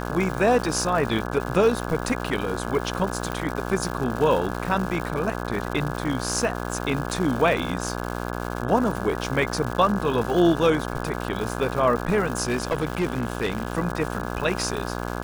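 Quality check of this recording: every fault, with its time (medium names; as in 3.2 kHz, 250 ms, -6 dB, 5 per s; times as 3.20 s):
buzz 60 Hz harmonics 28 -30 dBFS
crackle 280 per s -29 dBFS
3.32 s: pop -15 dBFS
12.43–13.73 s: clipped -19 dBFS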